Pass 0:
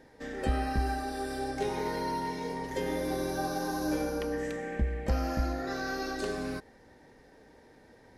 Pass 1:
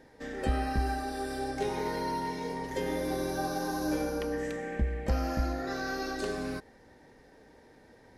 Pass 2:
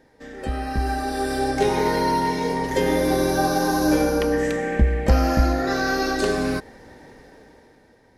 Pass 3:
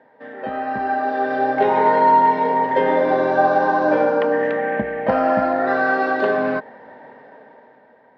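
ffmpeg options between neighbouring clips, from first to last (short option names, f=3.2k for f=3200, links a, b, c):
-af anull
-af "dynaudnorm=f=210:g=9:m=12dB"
-af "highpass=f=160:w=0.5412,highpass=f=160:w=1.3066,equalizer=f=170:t=q:w=4:g=-7,equalizer=f=330:t=q:w=4:g=-9,equalizer=f=630:t=q:w=4:g=8,equalizer=f=950:t=q:w=4:g=7,equalizer=f=1.6k:t=q:w=4:g=3,equalizer=f=2.4k:t=q:w=4:g=-5,lowpass=f=2.8k:w=0.5412,lowpass=f=2.8k:w=1.3066,volume=2.5dB"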